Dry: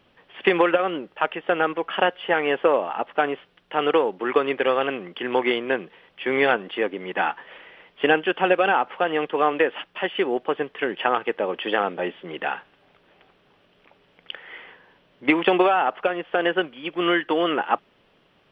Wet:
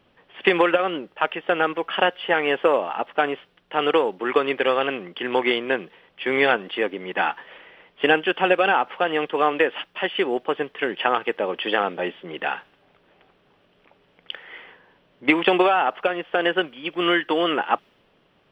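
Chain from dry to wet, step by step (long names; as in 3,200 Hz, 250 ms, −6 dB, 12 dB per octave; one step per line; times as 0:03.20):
high-shelf EQ 3,600 Hz +8 dB
one half of a high-frequency compander decoder only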